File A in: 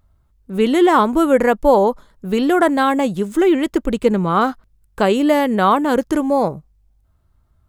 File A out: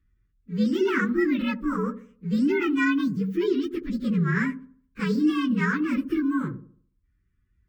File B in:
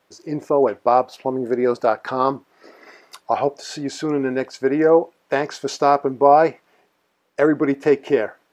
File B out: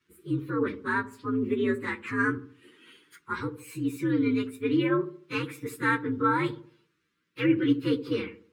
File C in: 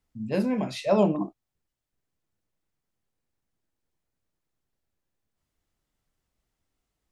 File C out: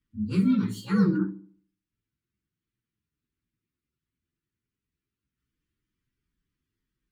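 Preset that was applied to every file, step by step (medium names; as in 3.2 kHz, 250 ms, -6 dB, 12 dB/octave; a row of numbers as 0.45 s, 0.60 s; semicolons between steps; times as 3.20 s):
frequency axis rescaled in octaves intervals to 122%; high-pass 61 Hz 6 dB/octave; dynamic bell 6.1 kHz, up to -5 dB, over -53 dBFS, Q 3; Butterworth band-stop 690 Hz, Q 0.66; treble shelf 4 kHz -11.5 dB; on a send: feedback echo behind a low-pass 73 ms, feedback 39%, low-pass 640 Hz, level -10.5 dB; on the sum: peak normalisation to -12 dBFS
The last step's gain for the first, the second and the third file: -2.0 dB, +1.0 dB, +6.5 dB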